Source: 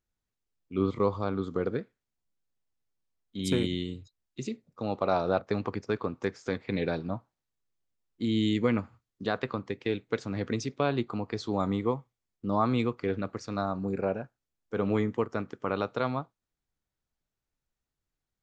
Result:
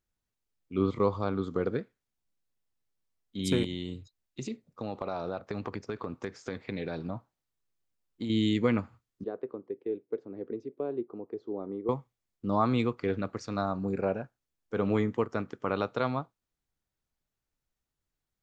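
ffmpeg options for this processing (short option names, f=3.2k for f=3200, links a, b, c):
-filter_complex "[0:a]asettb=1/sr,asplit=3[a][b][c];[a]atrim=end=3.644[d];[b]atrim=start=3.64:end=8.3,asetpts=PTS-STARTPTS,afade=t=in:d=0.004:c=qsin,afade=t=out:st=4.656:d=0.004:c=qsin,acompressor=threshold=-30dB:ratio=6:attack=3.2:release=140:knee=1:detection=peak[e];[c]atrim=start=8.296[f];[d][e]acrossfade=d=0.004:c1=hsin:c2=qsin[g];[g][f]acrossfade=d=0.004:c1=qsin:c2=hsin,asettb=1/sr,asplit=3[h][i][j];[h]atrim=end=9.244[k];[i]atrim=start=9.24:end=11.89,asetpts=PTS-STARTPTS,afade=t=in:d=0.004:c=qsin,afade=t=out:st=2.646:d=0.004:c=qsin,bandpass=f=390:t=q:w=3[l];[j]atrim=start=11.886[m];[k][l]acrossfade=d=0.004:c1=hsin:c2=qsin[n];[n][m]acrossfade=d=0.004:c1=qsin:c2=hsin"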